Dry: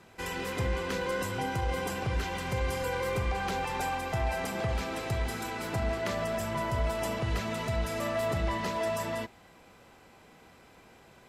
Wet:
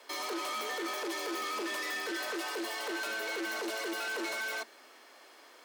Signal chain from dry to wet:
gain into a clipping stage and back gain 34 dB
frequency shifter +110 Hz
wrong playback speed 7.5 ips tape played at 15 ips

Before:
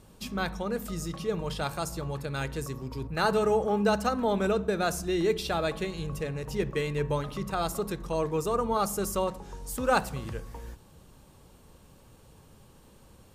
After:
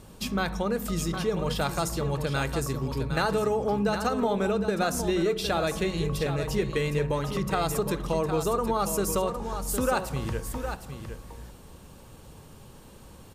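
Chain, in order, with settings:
downward compressor, threshold −29 dBFS, peak gain reduction 9.5 dB
single-tap delay 760 ms −8.5 dB
level +6 dB

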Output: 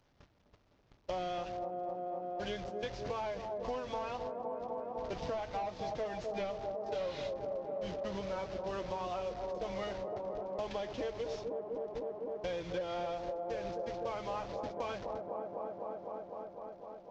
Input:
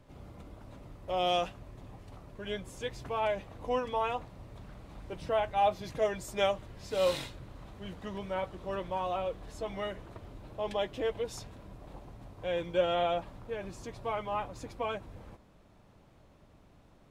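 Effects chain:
linear delta modulator 32 kbit/s, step −41.5 dBFS
noise gate −42 dBFS, range −30 dB
on a send: delay with a band-pass on its return 253 ms, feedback 80%, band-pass 410 Hz, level −7 dB
on the sum: downward compressor 6 to 1, threshold −42 dBFS, peak gain reduction 17.5 dB
level +6 dB

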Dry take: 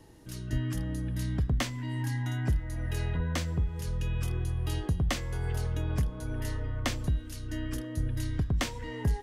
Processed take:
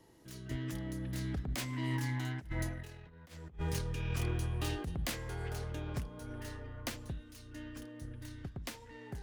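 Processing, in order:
phase distortion by the signal itself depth 0.17 ms
source passing by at 0:03.16, 10 m/s, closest 3.7 metres
low-shelf EQ 110 Hz −10.5 dB
compressor whose output falls as the input rises −46 dBFS, ratio −0.5
level +9.5 dB

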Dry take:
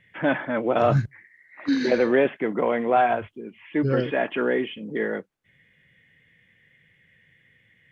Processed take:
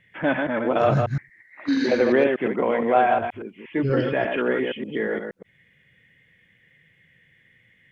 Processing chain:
delay that plays each chunk backwards 118 ms, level −4.5 dB

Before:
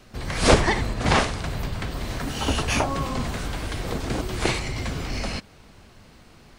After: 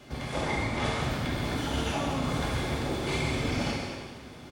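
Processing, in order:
high-pass filter 74 Hz 12 dB per octave
high-shelf EQ 2,100 Hz −4.5 dB
notch filter 1,900 Hz, Q 9
reversed playback
downward compressor 12 to 1, threshold −32 dBFS, peak gain reduction 20.5 dB
reversed playback
hollow resonant body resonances 2,000/3,300 Hz, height 14 dB, ringing for 45 ms
tempo change 1.4×
echo with shifted repeats 147 ms, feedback 33%, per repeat +140 Hz, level −9 dB
reverb whose tail is shaped and stops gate 490 ms falling, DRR −4 dB
wrong playback speed 24 fps film run at 25 fps

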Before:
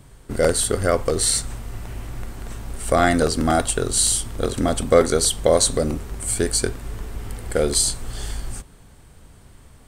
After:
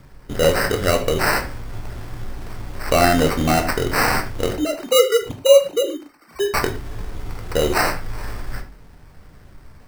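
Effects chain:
0:04.56–0:06.54: three sine waves on the formant tracks
decimation without filtering 13×
convolution reverb, pre-delay 7 ms, DRR 5 dB

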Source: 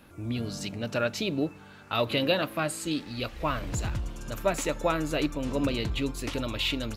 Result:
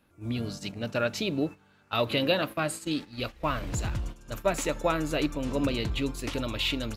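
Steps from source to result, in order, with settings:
noise gate −35 dBFS, range −12 dB

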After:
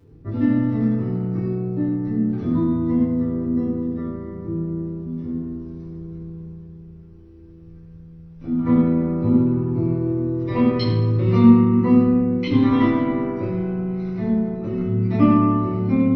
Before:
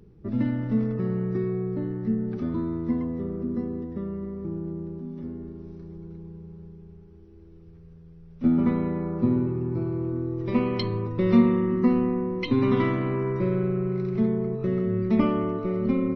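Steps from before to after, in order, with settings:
0:06.49–0:08.65: downward compressor 1.5 to 1, threshold −44 dBFS, peak gain reduction 9.5 dB
convolution reverb RT60 0.85 s, pre-delay 5 ms, DRR −10 dB
level −6.5 dB

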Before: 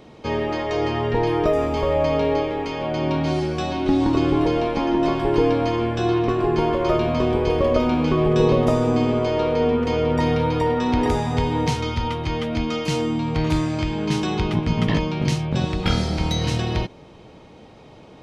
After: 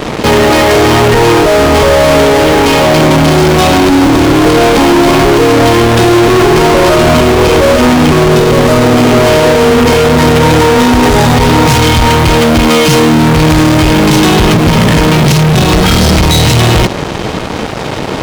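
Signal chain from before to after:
in parallel at +2 dB: fuzz pedal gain 44 dB, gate −46 dBFS
on the sum: boost into a limiter +5 dB
level −1 dB

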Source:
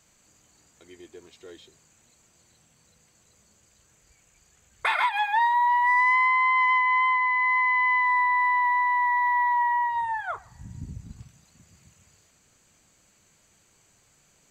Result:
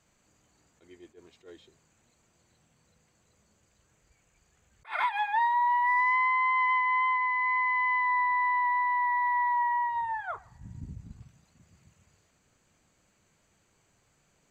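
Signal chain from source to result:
high-shelf EQ 3,400 Hz −9 dB
level that may rise only so fast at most 260 dB per second
level −3 dB

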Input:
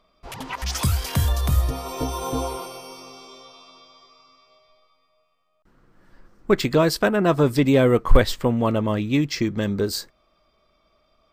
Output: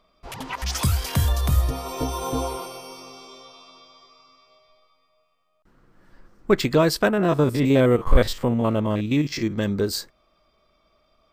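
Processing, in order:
0:07.13–0:09.58: spectrum averaged block by block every 50 ms

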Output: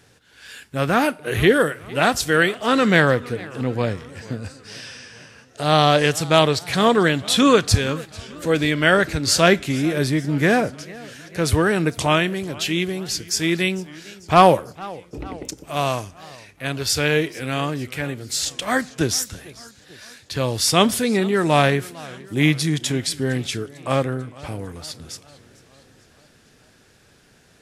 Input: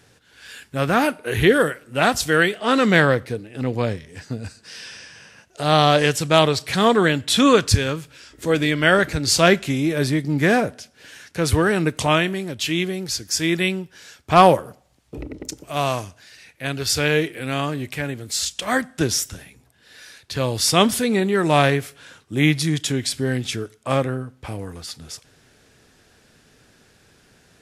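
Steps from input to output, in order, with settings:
feedback echo with a swinging delay time 450 ms, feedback 58%, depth 168 cents, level −21 dB

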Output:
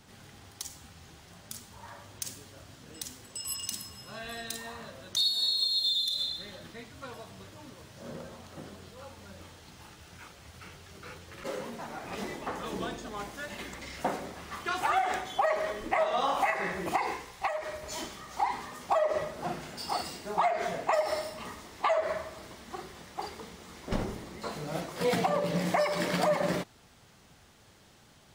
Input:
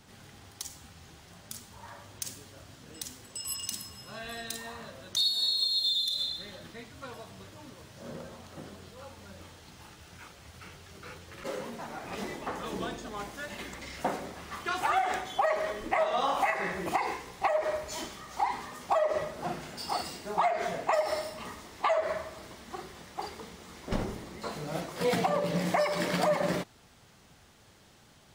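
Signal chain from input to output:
0:17.24–0:17.82: parametric band 200 Hz → 820 Hz −8.5 dB 2.2 octaves

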